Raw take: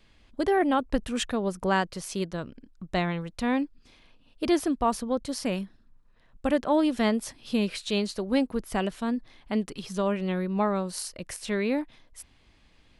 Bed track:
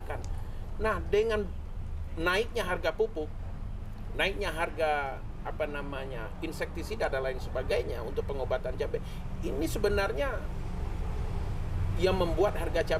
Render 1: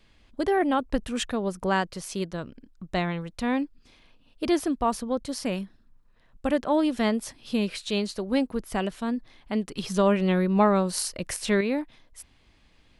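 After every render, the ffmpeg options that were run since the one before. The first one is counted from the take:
-filter_complex "[0:a]asettb=1/sr,asplit=3[s0][s1][s2];[s0]atrim=end=9.774[s3];[s1]atrim=start=9.77:end=11.61,asetpts=PTS-STARTPTS,afade=t=in:d=0.004:c=qsin,afade=t=out:st=1.836:d=0.004:c=qsin,acontrast=43[s4];[s2]atrim=start=11.606[s5];[s3][s4]acrossfade=d=0.004:c1=hsin:c2=qsin[s6];[s6][s5]acrossfade=d=0.004:c1=qsin:c2=hsin"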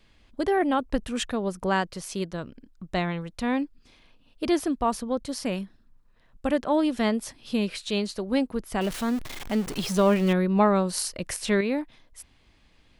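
-filter_complex "[0:a]asettb=1/sr,asplit=3[s0][s1][s2];[s0]atrim=end=8.814[s3];[s1]atrim=start=8.81:end=10.33,asetpts=PTS-STARTPTS,afade=t=in:d=0.004:c=qsin,afade=t=out:st=1.516:d=0.004:c=qsin,aeval=exprs='val(0)+0.5*0.0266*sgn(val(0))':c=same[s4];[s2]atrim=start=10.326[s5];[s3][s4]acrossfade=d=0.004:c1=hsin:c2=qsin[s6];[s6][s5]acrossfade=d=0.004:c1=qsin:c2=hsin"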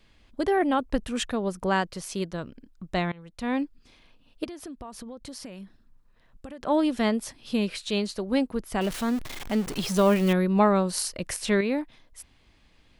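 -filter_complex "[0:a]asettb=1/sr,asplit=3[s0][s1][s2];[s0]atrim=end=4.444[s3];[s1]atrim=start=4.44:end=6.61,asetpts=PTS-STARTPTS,afade=t=in:d=0.004:c=qsin,afade=t=out:st=2.166:d=0.004:c=qsin,acompressor=threshold=0.0158:ratio=12:attack=3.2:release=140:knee=1:detection=peak[s4];[s2]atrim=start=6.606[s5];[s3][s4]acrossfade=d=0.004:c1=hsin:c2=qsin[s6];[s6][s5]acrossfade=d=0.004:c1=qsin:c2=hsin,asettb=1/sr,asplit=3[s7][s8][s9];[s7]atrim=end=9.964[s10];[s8]atrim=start=9.96:end=10.73,asetpts=PTS-STARTPTS,afade=t=in:d=0.004:c=qsin,afade=t=out:st=0.766:d=0.004:c=qsin,highshelf=f=9100:g=9.5[s11];[s9]atrim=start=10.726[s12];[s10][s11]acrossfade=d=0.004:c1=hsin:c2=qsin[s13];[s13][s12]acrossfade=d=0.004:c1=qsin:c2=hsin,asplit=2[s14][s15];[s14]atrim=end=3.12,asetpts=PTS-STARTPTS,afade=t=out:st=3.116:d=0.004:c=hsin:silence=0.0891251[s16];[s15]atrim=start=3.12,asetpts=PTS-STARTPTS,afade=t=in:d=0.49:silence=0.0891251[s17];[s16][s17]concat=n=2:v=0:a=1"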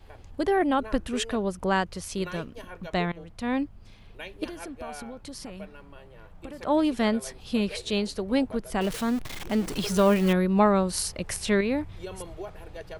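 -filter_complex "[1:a]volume=0.251[s0];[0:a][s0]amix=inputs=2:normalize=0"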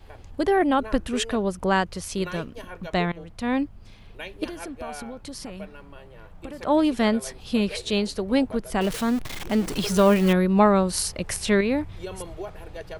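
-af "volume=1.41"

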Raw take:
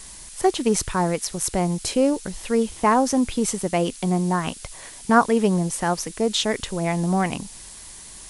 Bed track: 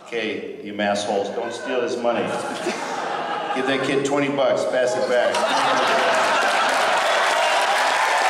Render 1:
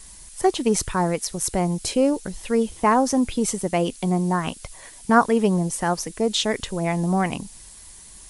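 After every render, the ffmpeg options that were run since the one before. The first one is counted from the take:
-af "afftdn=nr=6:nf=-42"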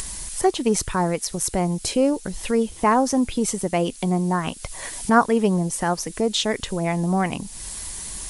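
-af "acompressor=mode=upward:threshold=0.0891:ratio=2.5"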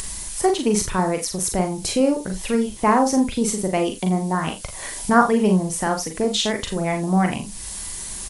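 -filter_complex "[0:a]asplit=2[s0][s1];[s1]adelay=38,volume=0.398[s2];[s0][s2]amix=inputs=2:normalize=0,asplit=2[s3][s4];[s4]aecho=0:1:43|53:0.376|0.251[s5];[s3][s5]amix=inputs=2:normalize=0"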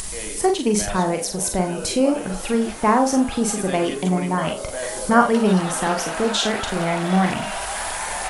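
-filter_complex "[1:a]volume=0.316[s0];[0:a][s0]amix=inputs=2:normalize=0"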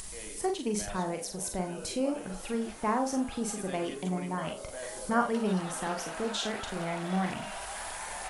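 -af "volume=0.251"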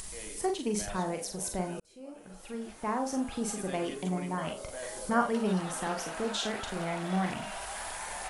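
-filter_complex "[0:a]asplit=2[s0][s1];[s0]atrim=end=1.8,asetpts=PTS-STARTPTS,afade=t=out:st=1.796:d=0.004:c=hsin[s2];[s1]atrim=start=1.8,asetpts=PTS-STARTPTS,afade=t=in:d=1.64[s3];[s2][s3]concat=n=2:v=0:a=1"

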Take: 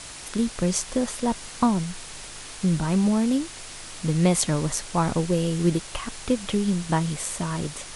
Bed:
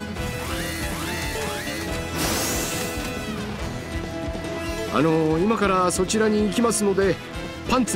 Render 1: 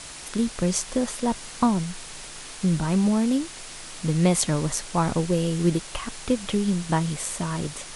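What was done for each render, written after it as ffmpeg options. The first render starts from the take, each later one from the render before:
-af "bandreject=f=50:t=h:w=4,bandreject=f=100:t=h:w=4"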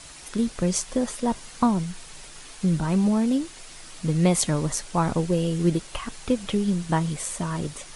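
-af "afftdn=nr=6:nf=-40"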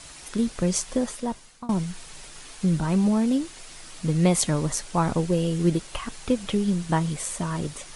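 -filter_complex "[0:a]asplit=2[s0][s1];[s0]atrim=end=1.69,asetpts=PTS-STARTPTS,afade=t=out:st=0.97:d=0.72:silence=0.0668344[s2];[s1]atrim=start=1.69,asetpts=PTS-STARTPTS,afade=t=in:d=0.004:c=hsin:silence=0.0668344[s3];[s2][s3]concat=n=2:v=0:a=1"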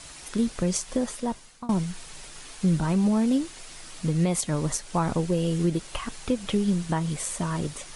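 -af "alimiter=limit=0.188:level=0:latency=1:release=188"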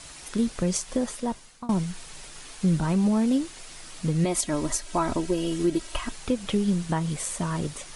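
-filter_complex "[0:a]asettb=1/sr,asplit=3[s0][s1][s2];[s0]atrim=end=4.244[s3];[s1]atrim=start=4.24:end=6.12,asetpts=PTS-STARTPTS,afade=t=in:d=0.004:c=qsin,afade=t=out:st=1.876:d=0.004:c=qsin,aecho=1:1:3.1:0.65,atrim=end_sample=82908[s4];[s2]atrim=start=6.116[s5];[s3][s4]acrossfade=d=0.004:c1=hsin:c2=qsin[s6];[s6][s5]acrossfade=d=0.004:c1=qsin:c2=hsin"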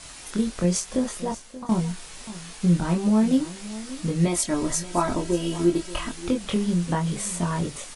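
-filter_complex "[0:a]asplit=2[s0][s1];[s1]adelay=23,volume=0.708[s2];[s0][s2]amix=inputs=2:normalize=0,aecho=1:1:581:0.158"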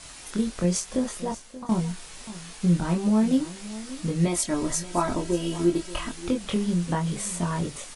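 -af "volume=0.841"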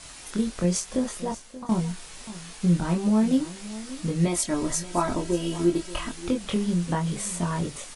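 -af anull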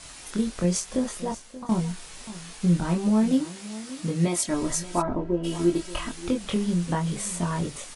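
-filter_complex "[0:a]asettb=1/sr,asplit=3[s0][s1][s2];[s0]atrim=end=3.324[s3];[s1]atrim=start=3.32:end=4.48,asetpts=PTS-STARTPTS,afade=t=in:d=0.004:c=qsin,afade=t=out:st=1.156:d=0.004:c=qsin,highpass=95[s4];[s2]atrim=start=4.476[s5];[s3][s4]acrossfade=d=0.004:c1=hsin:c2=qsin[s6];[s6][s5]acrossfade=d=0.004:c1=qsin:c2=hsin,asplit=3[s7][s8][s9];[s7]afade=t=out:st=5.01:d=0.02[s10];[s8]lowpass=1100,afade=t=in:st=5.01:d=0.02,afade=t=out:st=5.43:d=0.02[s11];[s9]afade=t=in:st=5.43:d=0.02[s12];[s10][s11][s12]amix=inputs=3:normalize=0"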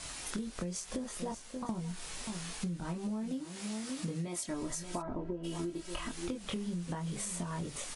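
-af "alimiter=limit=0.133:level=0:latency=1:release=321,acompressor=threshold=0.0178:ratio=6"

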